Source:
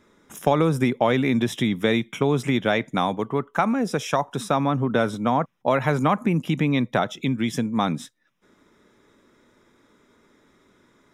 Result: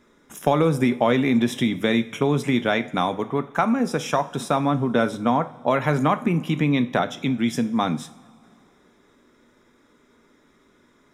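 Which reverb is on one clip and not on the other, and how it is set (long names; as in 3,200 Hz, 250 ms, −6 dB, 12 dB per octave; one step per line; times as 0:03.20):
coupled-rooms reverb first 0.39 s, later 2.5 s, from −18 dB, DRR 10 dB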